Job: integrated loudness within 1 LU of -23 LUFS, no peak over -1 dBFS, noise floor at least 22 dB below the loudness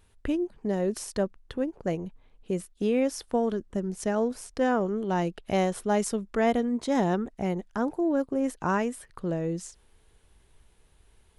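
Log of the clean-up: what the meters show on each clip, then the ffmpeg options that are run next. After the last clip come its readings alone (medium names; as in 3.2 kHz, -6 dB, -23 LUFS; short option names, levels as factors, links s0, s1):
loudness -29.0 LUFS; peak level -11.5 dBFS; loudness target -23.0 LUFS
-> -af "volume=2"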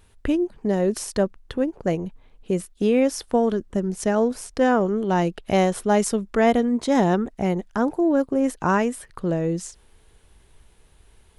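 loudness -23.0 LUFS; peak level -5.5 dBFS; noise floor -56 dBFS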